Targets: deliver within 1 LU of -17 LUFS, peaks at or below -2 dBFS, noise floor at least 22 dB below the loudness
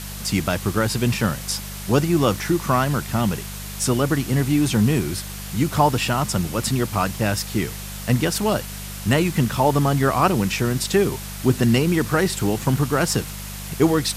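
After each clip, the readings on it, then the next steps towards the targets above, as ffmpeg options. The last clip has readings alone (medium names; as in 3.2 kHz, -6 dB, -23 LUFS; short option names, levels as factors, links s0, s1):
hum 50 Hz; highest harmonic 200 Hz; hum level -32 dBFS; noise floor -33 dBFS; noise floor target -43 dBFS; loudness -21.0 LUFS; peak level -3.5 dBFS; loudness target -17.0 LUFS
-> -af "bandreject=f=50:t=h:w=4,bandreject=f=100:t=h:w=4,bandreject=f=150:t=h:w=4,bandreject=f=200:t=h:w=4"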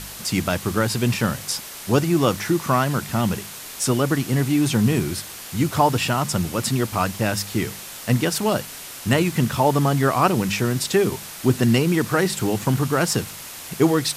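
hum not found; noise floor -37 dBFS; noise floor target -44 dBFS
-> -af "afftdn=nr=7:nf=-37"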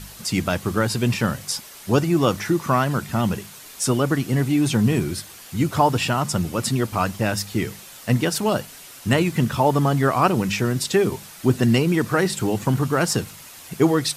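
noise floor -42 dBFS; noise floor target -44 dBFS
-> -af "afftdn=nr=6:nf=-42"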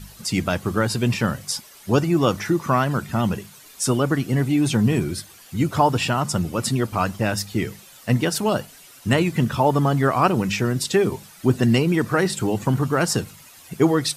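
noise floor -47 dBFS; loudness -21.5 LUFS; peak level -3.5 dBFS; loudness target -17.0 LUFS
-> -af "volume=1.68,alimiter=limit=0.794:level=0:latency=1"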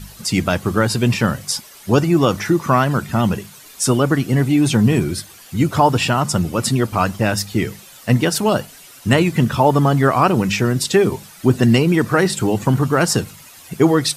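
loudness -17.5 LUFS; peak level -2.0 dBFS; noise floor -42 dBFS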